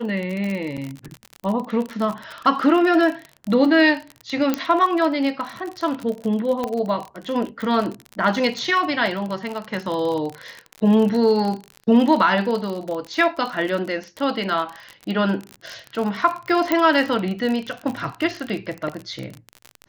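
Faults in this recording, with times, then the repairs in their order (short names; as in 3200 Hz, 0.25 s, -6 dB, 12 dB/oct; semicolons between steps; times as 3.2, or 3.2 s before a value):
crackle 42/s -25 dBFS
0.77–0.78 gap 6.3 ms
4.54 pop -7 dBFS
6.64 pop -12 dBFS
16.72 pop -6 dBFS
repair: de-click; interpolate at 0.77, 6.3 ms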